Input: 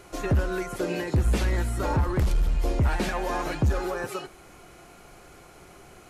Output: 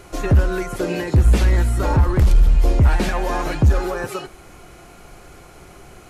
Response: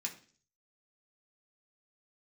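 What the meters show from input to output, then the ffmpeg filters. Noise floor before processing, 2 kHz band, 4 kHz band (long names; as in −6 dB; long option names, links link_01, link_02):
−50 dBFS, +5.0 dB, +5.0 dB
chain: -af "lowshelf=frequency=110:gain=6.5,volume=5dB"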